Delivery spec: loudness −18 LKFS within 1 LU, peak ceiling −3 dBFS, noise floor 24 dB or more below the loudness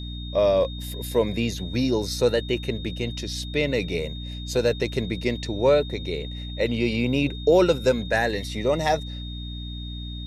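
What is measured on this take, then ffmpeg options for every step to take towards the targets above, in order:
mains hum 60 Hz; hum harmonics up to 300 Hz; level of the hum −31 dBFS; interfering tone 3,700 Hz; level of the tone −39 dBFS; integrated loudness −25.0 LKFS; sample peak −8.0 dBFS; target loudness −18.0 LKFS
→ -af "bandreject=frequency=60:width_type=h:width=6,bandreject=frequency=120:width_type=h:width=6,bandreject=frequency=180:width_type=h:width=6,bandreject=frequency=240:width_type=h:width=6,bandreject=frequency=300:width_type=h:width=6"
-af "bandreject=frequency=3700:width=30"
-af "volume=7dB,alimiter=limit=-3dB:level=0:latency=1"

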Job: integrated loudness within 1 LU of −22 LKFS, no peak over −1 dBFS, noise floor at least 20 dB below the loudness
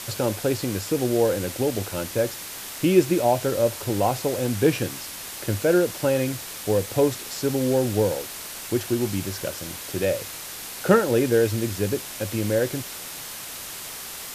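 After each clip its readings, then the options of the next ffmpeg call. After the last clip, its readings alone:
background noise floor −37 dBFS; target noise floor −45 dBFS; integrated loudness −24.5 LKFS; sample peak −4.0 dBFS; target loudness −22.0 LKFS
→ -af "afftdn=noise_reduction=8:noise_floor=-37"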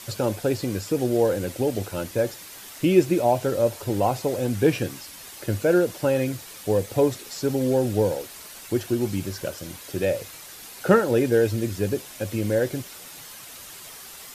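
background noise floor −42 dBFS; target noise floor −45 dBFS
→ -af "afftdn=noise_reduction=6:noise_floor=-42"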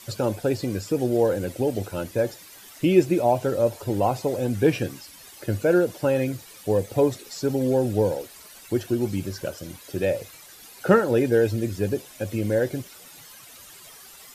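background noise floor −47 dBFS; integrated loudness −24.5 LKFS; sample peak −4.0 dBFS; target loudness −22.0 LKFS
→ -af "volume=2.5dB"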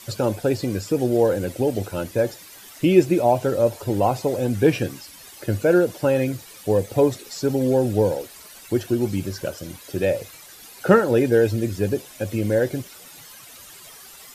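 integrated loudness −22.0 LKFS; sample peak −1.5 dBFS; background noise floor −44 dBFS

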